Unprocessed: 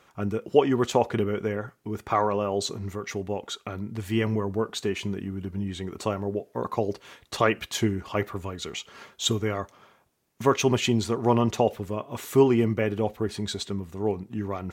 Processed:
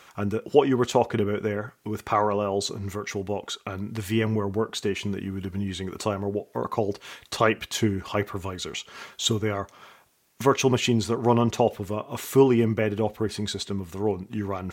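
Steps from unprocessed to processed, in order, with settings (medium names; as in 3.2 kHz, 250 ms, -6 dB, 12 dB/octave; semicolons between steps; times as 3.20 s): tape noise reduction on one side only encoder only; trim +1 dB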